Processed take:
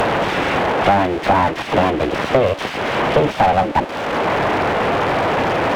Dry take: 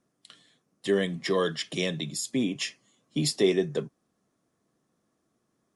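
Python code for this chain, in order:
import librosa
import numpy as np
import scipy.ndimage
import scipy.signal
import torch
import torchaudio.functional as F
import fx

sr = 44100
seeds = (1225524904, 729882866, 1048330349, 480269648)

p1 = fx.delta_mod(x, sr, bps=16000, step_db=-34.5)
p2 = fx.low_shelf_res(p1, sr, hz=670.0, db=7.0, q=1.5)
p3 = np.abs(p2)
p4 = fx.highpass(p3, sr, hz=210.0, slope=6)
p5 = fx.fold_sine(p4, sr, drive_db=12, ceiling_db=-6.0)
p6 = p4 + F.gain(torch.from_numpy(p5), -7.0).numpy()
p7 = fx.band_squash(p6, sr, depth_pct=100)
y = F.gain(torch.from_numpy(p7), 2.0).numpy()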